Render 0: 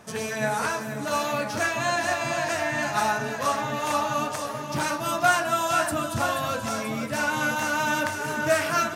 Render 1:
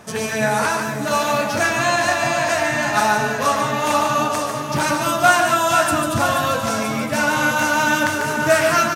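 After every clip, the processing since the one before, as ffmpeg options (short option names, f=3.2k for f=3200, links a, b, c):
-af "aecho=1:1:145:0.501,volume=6.5dB"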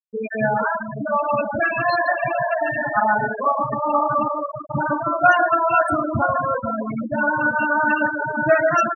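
-af "equalizer=f=14k:t=o:w=0.26:g=6.5,afftfilt=real='re*gte(hypot(re,im),0.316)':imag='im*gte(hypot(re,im),0.316)':win_size=1024:overlap=0.75"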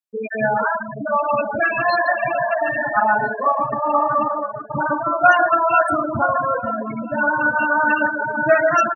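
-filter_complex "[0:a]lowshelf=f=220:g=-7.5,asplit=2[a][b];[b]adelay=1341,volume=-18dB,highshelf=f=4k:g=-30.2[c];[a][c]amix=inputs=2:normalize=0,volume=2dB"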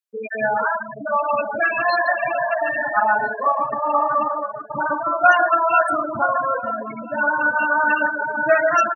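-af "highpass=f=430:p=1"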